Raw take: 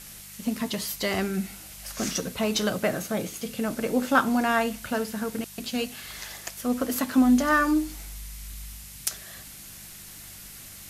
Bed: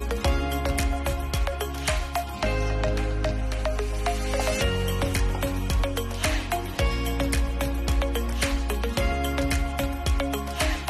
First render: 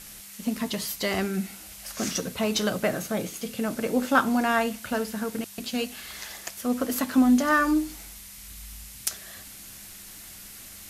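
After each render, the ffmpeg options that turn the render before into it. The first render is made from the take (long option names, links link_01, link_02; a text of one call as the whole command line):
ffmpeg -i in.wav -af "bandreject=frequency=50:width_type=h:width=4,bandreject=frequency=100:width_type=h:width=4,bandreject=frequency=150:width_type=h:width=4" out.wav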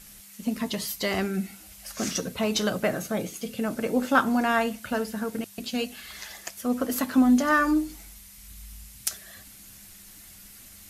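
ffmpeg -i in.wav -af "afftdn=noise_reduction=6:noise_floor=-45" out.wav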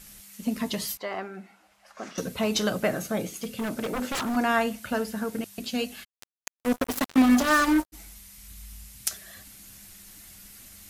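ffmpeg -i in.wav -filter_complex "[0:a]asettb=1/sr,asplit=3[link_01][link_02][link_03];[link_01]atrim=end=0.974[link_04];[link_02]atrim=start=0.97:end=2.18,asetpts=PTS-STARTPTS,afade=type=in:duration=0.004:curve=qsin,afade=type=out:start_time=1.206:duration=0.004:curve=qsin,bandpass=frequency=910:width_type=q:width=1.2[link_05];[link_03]atrim=start=2.176[link_06];[link_04][link_05]acrossfade=duration=0.004:curve1=hsin:curve2=qsin[link_07];[link_07][link_06]acrossfade=duration=0.004:curve1=qsin:curve2=hsin,asplit=3[link_08][link_09][link_10];[link_08]afade=type=out:start_time=3.29:duration=0.02[link_11];[link_09]aeval=exprs='0.0631*(abs(mod(val(0)/0.0631+3,4)-2)-1)':channel_layout=same,afade=type=in:start_time=3.29:duration=0.02,afade=type=out:start_time=4.35:duration=0.02[link_12];[link_10]afade=type=in:start_time=4.35:duration=0.02[link_13];[link_11][link_12][link_13]amix=inputs=3:normalize=0,asplit=3[link_14][link_15][link_16];[link_14]afade=type=out:start_time=6.03:duration=0.02[link_17];[link_15]acrusher=bits=3:mix=0:aa=0.5,afade=type=in:start_time=6.03:duration=0.02,afade=type=out:start_time=7.92:duration=0.02[link_18];[link_16]afade=type=in:start_time=7.92:duration=0.02[link_19];[link_17][link_18][link_19]amix=inputs=3:normalize=0" out.wav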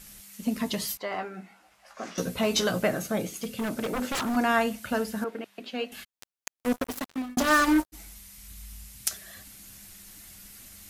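ffmpeg -i in.wav -filter_complex "[0:a]asettb=1/sr,asplit=3[link_01][link_02][link_03];[link_01]atrim=end=1.104[link_04];[link_02]atrim=start=1.1:end=2.84,asetpts=PTS-STARTPTS,afade=type=in:duration=0.004:curve=qsin,afade=type=out:start_time=1.736:duration=0.004:curve=qsin,asplit=2[link_05][link_06];[link_06]adelay=17,volume=-5dB[link_07];[link_05][link_07]amix=inputs=2:normalize=0,atrim=end_sample=76734[link_08];[link_03]atrim=start=2.836[link_09];[link_04][link_08]acrossfade=duration=0.004:curve1=hsin:curve2=qsin[link_10];[link_10][link_09]acrossfade=duration=0.004:curve1=qsin:curve2=hsin,asettb=1/sr,asplit=3[link_11][link_12][link_13];[link_11]atrim=end=5.244[link_14];[link_12]atrim=start=5.24:end=5.92,asetpts=PTS-STARTPTS,afade=type=in:duration=0.004:curve=qsin,afade=type=out:start_time=0.676:duration=0.004:curve=qsin,acrossover=split=270 3400:gain=0.0891 1 0.1[link_15][link_16][link_17];[link_15][link_16][link_17]amix=inputs=3:normalize=0[link_18];[link_13]atrim=start=5.916[link_19];[link_14][link_18]acrossfade=duration=0.004:curve1=hsin:curve2=qsin[link_20];[link_20][link_19]acrossfade=duration=0.004:curve1=qsin:curve2=hsin,asplit=2[link_21][link_22];[link_21]atrim=end=7.37,asetpts=PTS-STARTPTS,afade=type=out:start_time=6.58:duration=0.79[link_23];[link_22]atrim=start=7.37,asetpts=PTS-STARTPTS,afade=type=in:duration=0.004:curve=hsin[link_24];[link_23][link_24]concat=n=2:v=0:a=1" out.wav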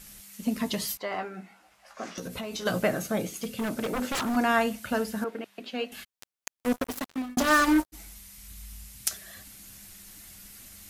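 ffmpeg -i in.wav -filter_complex "[0:a]asplit=3[link_01][link_02][link_03];[link_01]afade=type=out:start_time=2.13:duration=0.02[link_04];[link_02]acompressor=threshold=-32dB:ratio=8:attack=3.2:release=140:knee=1:detection=peak,afade=type=in:start_time=2.13:duration=0.02,afade=type=out:start_time=2.65:duration=0.02[link_05];[link_03]afade=type=in:start_time=2.65:duration=0.02[link_06];[link_04][link_05][link_06]amix=inputs=3:normalize=0" out.wav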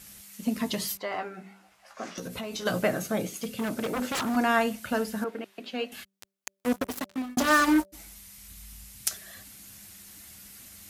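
ffmpeg -i in.wav -af "highpass=60,bandreject=frequency=194.5:width_type=h:width=4,bandreject=frequency=389:width_type=h:width=4,bandreject=frequency=583.5:width_type=h:width=4" out.wav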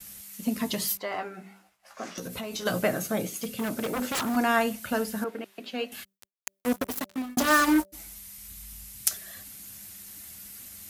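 ffmpeg -i in.wav -af "agate=range=-33dB:threshold=-53dB:ratio=3:detection=peak,highshelf=frequency=11000:gain=9" out.wav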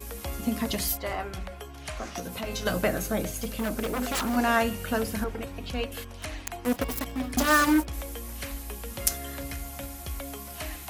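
ffmpeg -i in.wav -i bed.wav -filter_complex "[1:a]volume=-12dB[link_01];[0:a][link_01]amix=inputs=2:normalize=0" out.wav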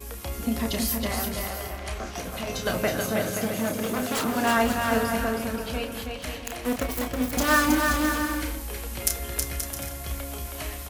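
ffmpeg -i in.wav -filter_complex "[0:a]asplit=2[link_01][link_02];[link_02]adelay=31,volume=-7dB[link_03];[link_01][link_03]amix=inputs=2:normalize=0,asplit=2[link_04][link_05];[link_05]aecho=0:1:320|528|663.2|751.1|808.2:0.631|0.398|0.251|0.158|0.1[link_06];[link_04][link_06]amix=inputs=2:normalize=0" out.wav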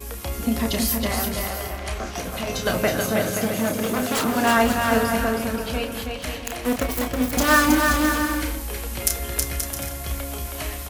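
ffmpeg -i in.wav -af "volume=4dB,alimiter=limit=-1dB:level=0:latency=1" out.wav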